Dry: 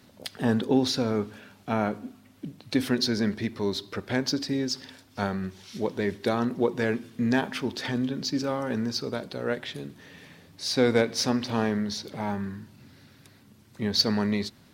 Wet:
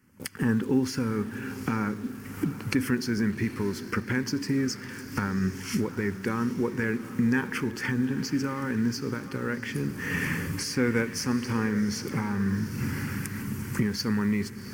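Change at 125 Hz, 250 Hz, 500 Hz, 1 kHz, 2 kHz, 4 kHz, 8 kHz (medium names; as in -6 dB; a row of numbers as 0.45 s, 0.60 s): +4.0 dB, +1.0 dB, -5.0 dB, -3.0 dB, +3.0 dB, -7.5 dB, +0.5 dB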